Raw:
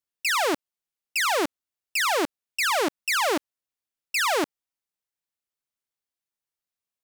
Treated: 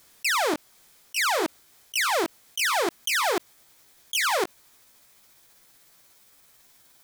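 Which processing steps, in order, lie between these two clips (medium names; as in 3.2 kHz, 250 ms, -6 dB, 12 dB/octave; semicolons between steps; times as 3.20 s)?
pitch bend over the whole clip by +6 st starting unshifted; band-stop 2.8 kHz, Q 12; level flattener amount 50%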